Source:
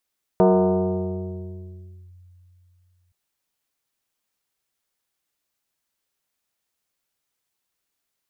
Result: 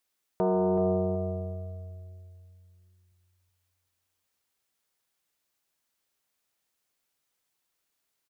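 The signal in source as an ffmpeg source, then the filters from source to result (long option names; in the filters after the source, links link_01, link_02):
-f lavfi -i "aevalsrc='0.282*pow(10,-3*t/3.12)*sin(2*PI*89.7*t+2.5*clip(1-t/1.73,0,1)*sin(2*PI*3.09*89.7*t))':duration=2.72:sample_rate=44100"
-filter_complex "[0:a]lowshelf=frequency=190:gain=-4,alimiter=limit=-20.5dB:level=0:latency=1,asplit=2[link_01][link_02];[link_02]adelay=377,lowpass=frequency=870:poles=1,volume=-6dB,asplit=2[link_03][link_04];[link_04]adelay=377,lowpass=frequency=870:poles=1,volume=0.29,asplit=2[link_05][link_06];[link_06]adelay=377,lowpass=frequency=870:poles=1,volume=0.29,asplit=2[link_07][link_08];[link_08]adelay=377,lowpass=frequency=870:poles=1,volume=0.29[link_09];[link_03][link_05][link_07][link_09]amix=inputs=4:normalize=0[link_10];[link_01][link_10]amix=inputs=2:normalize=0"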